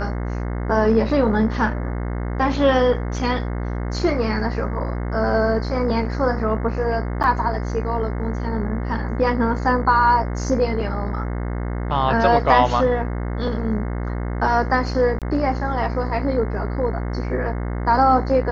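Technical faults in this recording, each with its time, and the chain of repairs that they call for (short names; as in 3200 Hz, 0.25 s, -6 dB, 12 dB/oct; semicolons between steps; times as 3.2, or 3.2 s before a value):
buzz 60 Hz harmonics 36 -25 dBFS
7.23–7.24 gap 8.4 ms
15.19–15.22 gap 27 ms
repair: de-hum 60 Hz, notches 36; interpolate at 7.23, 8.4 ms; interpolate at 15.19, 27 ms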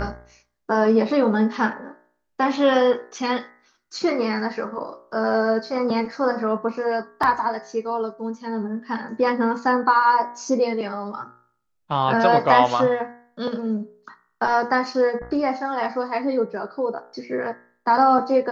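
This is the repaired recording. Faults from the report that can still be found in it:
none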